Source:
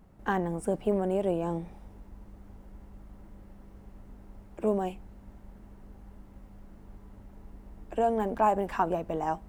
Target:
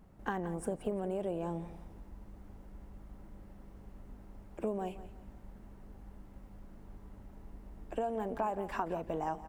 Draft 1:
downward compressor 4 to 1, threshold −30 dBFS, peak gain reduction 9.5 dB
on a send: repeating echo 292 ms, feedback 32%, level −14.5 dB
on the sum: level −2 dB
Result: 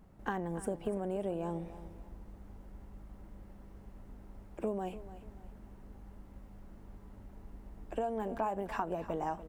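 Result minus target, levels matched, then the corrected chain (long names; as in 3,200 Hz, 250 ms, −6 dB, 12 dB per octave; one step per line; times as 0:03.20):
echo 119 ms late
downward compressor 4 to 1, threshold −30 dBFS, peak gain reduction 9.5 dB
on a send: repeating echo 173 ms, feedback 32%, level −14.5 dB
on the sum: level −2 dB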